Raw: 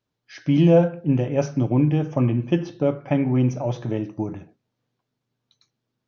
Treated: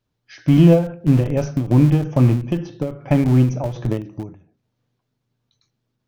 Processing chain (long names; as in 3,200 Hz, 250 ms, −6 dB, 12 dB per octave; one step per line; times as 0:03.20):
low-shelf EQ 100 Hz +12 dB
in parallel at −11 dB: comparator with hysteresis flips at −17.5 dBFS
on the sum: every ending faded ahead of time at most 120 dB per second
level +2 dB